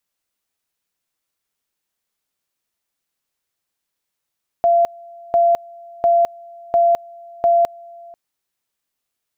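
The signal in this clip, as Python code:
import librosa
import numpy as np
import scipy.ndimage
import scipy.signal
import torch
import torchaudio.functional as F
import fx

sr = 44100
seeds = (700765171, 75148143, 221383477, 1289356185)

y = fx.two_level_tone(sr, hz=685.0, level_db=-10.5, drop_db=25.5, high_s=0.21, low_s=0.49, rounds=5)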